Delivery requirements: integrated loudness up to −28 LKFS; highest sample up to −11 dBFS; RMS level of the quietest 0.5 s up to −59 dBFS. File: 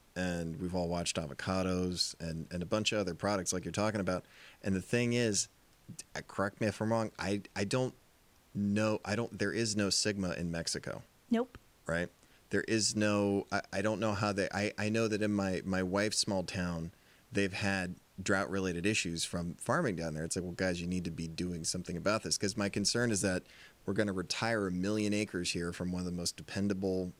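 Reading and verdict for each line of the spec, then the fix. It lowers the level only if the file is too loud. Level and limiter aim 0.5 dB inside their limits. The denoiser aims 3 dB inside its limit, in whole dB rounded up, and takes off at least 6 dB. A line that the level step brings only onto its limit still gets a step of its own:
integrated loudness −34.0 LKFS: in spec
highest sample −15.0 dBFS: in spec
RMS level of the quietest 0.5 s −65 dBFS: in spec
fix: no processing needed

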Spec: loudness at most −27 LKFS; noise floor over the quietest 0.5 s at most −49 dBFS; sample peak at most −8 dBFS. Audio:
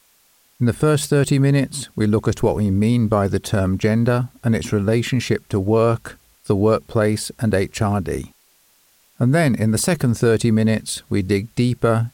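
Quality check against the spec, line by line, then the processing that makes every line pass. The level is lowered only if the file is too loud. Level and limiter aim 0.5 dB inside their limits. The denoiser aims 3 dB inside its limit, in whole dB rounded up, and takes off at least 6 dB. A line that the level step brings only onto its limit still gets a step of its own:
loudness −19.0 LKFS: out of spec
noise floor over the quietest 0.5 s −57 dBFS: in spec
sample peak −5.0 dBFS: out of spec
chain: level −8.5 dB

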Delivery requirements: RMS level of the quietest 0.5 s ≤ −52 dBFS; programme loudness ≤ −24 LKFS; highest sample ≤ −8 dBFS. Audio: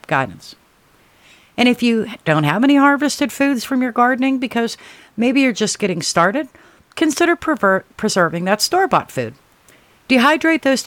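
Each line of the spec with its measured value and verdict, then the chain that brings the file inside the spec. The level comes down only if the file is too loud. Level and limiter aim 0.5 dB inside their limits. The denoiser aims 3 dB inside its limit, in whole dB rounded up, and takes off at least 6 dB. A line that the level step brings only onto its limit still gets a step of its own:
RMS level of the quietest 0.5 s −53 dBFS: in spec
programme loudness −16.5 LKFS: out of spec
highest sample −2.0 dBFS: out of spec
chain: level −8 dB

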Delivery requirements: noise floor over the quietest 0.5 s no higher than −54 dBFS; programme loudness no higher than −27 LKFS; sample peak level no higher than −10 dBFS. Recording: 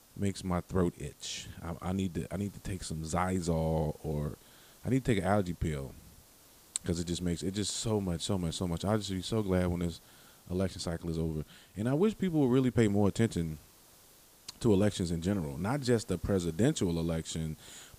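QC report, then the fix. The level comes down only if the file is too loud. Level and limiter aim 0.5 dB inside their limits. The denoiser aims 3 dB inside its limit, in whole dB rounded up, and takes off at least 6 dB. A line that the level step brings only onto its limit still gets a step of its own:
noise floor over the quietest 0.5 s −59 dBFS: in spec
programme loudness −32.5 LKFS: in spec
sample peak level −10.5 dBFS: in spec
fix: no processing needed

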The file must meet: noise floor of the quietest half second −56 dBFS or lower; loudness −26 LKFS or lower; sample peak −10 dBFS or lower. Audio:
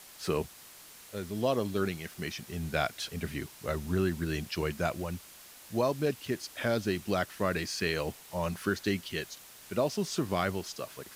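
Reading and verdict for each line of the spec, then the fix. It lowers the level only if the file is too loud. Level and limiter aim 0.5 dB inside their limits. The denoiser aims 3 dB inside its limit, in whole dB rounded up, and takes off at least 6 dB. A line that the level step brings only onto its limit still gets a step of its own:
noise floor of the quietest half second −52 dBFS: out of spec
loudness −33.0 LKFS: in spec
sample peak −15.0 dBFS: in spec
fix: broadband denoise 7 dB, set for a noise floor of −52 dBFS

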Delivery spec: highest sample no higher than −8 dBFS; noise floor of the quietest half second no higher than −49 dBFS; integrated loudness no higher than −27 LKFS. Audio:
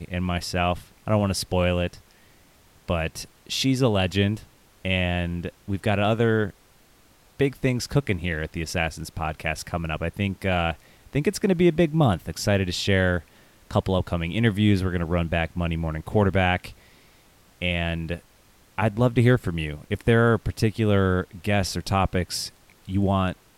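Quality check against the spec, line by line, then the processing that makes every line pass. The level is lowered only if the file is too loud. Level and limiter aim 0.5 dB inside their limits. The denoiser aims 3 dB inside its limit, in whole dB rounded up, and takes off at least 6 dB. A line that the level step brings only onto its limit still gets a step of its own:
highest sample −7.0 dBFS: out of spec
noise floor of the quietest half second −56 dBFS: in spec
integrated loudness −24.5 LKFS: out of spec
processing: level −3 dB

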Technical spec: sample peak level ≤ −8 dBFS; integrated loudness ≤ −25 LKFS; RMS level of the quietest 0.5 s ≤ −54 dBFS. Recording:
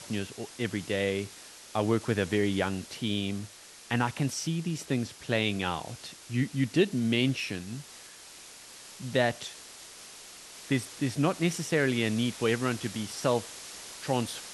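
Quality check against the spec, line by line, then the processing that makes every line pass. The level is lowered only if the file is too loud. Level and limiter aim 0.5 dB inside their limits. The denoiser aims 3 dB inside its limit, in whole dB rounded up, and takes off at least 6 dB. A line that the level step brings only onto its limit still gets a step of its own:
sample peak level −12.0 dBFS: in spec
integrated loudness −30.0 LKFS: in spec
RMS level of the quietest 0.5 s −49 dBFS: out of spec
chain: broadband denoise 8 dB, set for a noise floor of −49 dBFS

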